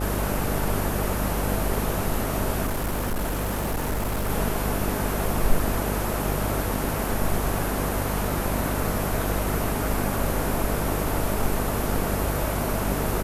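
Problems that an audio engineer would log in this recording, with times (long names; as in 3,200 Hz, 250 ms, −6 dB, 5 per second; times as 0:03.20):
mains buzz 50 Hz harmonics 15 −29 dBFS
0:02.65–0:04.30: clipping −22.5 dBFS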